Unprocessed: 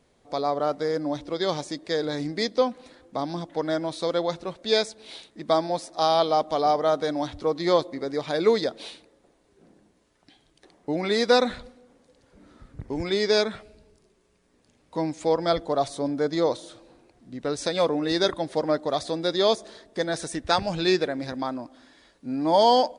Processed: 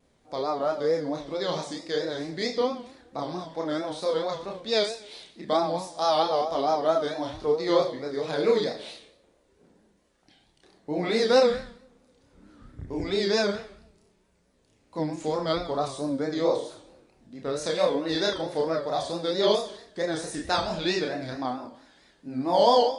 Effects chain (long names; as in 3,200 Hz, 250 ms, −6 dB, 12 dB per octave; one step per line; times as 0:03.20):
multi-voice chorus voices 2, 0.18 Hz, delay 30 ms, depth 2.3 ms
four-comb reverb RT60 0.56 s, combs from 30 ms, DRR 5.5 dB
pitch vibrato 4.5 Hz 98 cents